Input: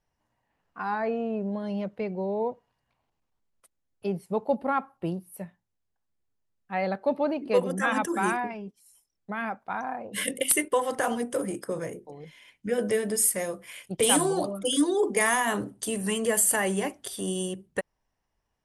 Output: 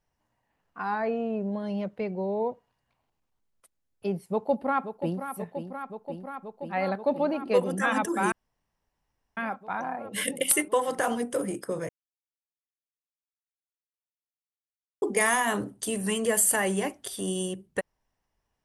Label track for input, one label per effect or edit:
4.300000	5.290000	echo throw 0.53 s, feedback 85%, level -9.5 dB
8.320000	9.370000	room tone
11.890000	15.020000	mute

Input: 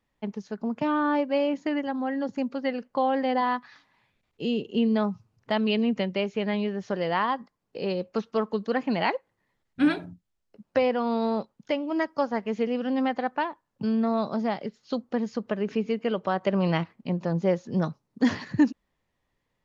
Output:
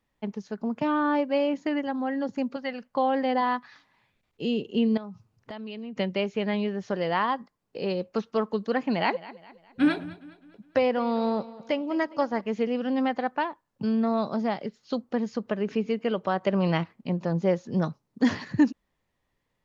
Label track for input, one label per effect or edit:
2.560000	2.960000	bell 360 Hz -14.5 dB
4.970000	5.970000	compressor 4:1, threshold -37 dBFS
8.830000	12.410000	feedback echo 0.206 s, feedback 43%, level -18 dB

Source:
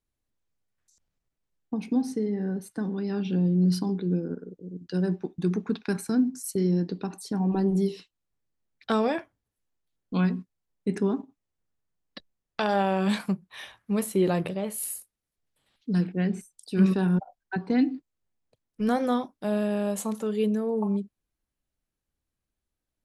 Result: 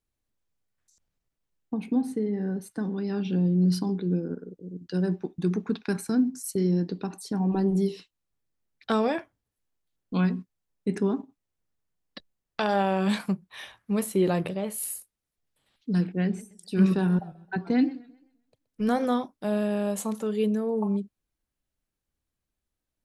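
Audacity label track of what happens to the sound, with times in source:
1.740000	2.340000	bell 5500 Hz -14 dB 0.48 oct
16.250000	19.050000	warbling echo 0.13 s, feedback 36%, depth 168 cents, level -19 dB

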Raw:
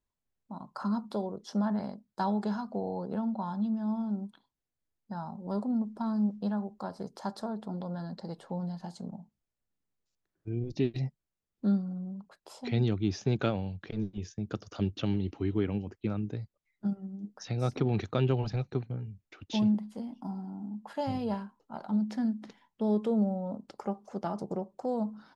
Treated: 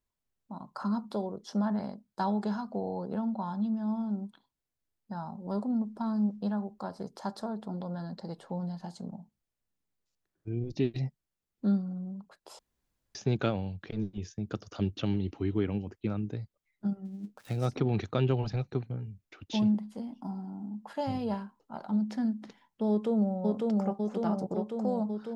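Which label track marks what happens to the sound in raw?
12.590000	13.150000	room tone
17.050000	17.660000	switching dead time of 0.1 ms
22.890000	23.360000	echo throw 0.55 s, feedback 75%, level -1.5 dB

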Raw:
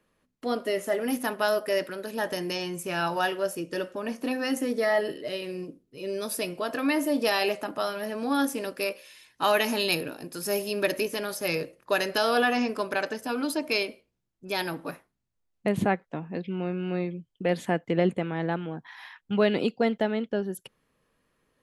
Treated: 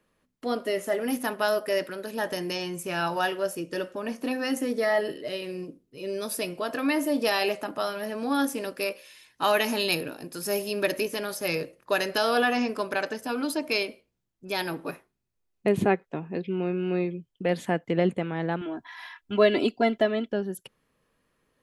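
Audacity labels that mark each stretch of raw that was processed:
14.690000	17.280000	small resonant body resonances 390/2500 Hz, height 8 dB
18.610000	20.330000	comb 3 ms, depth 93%

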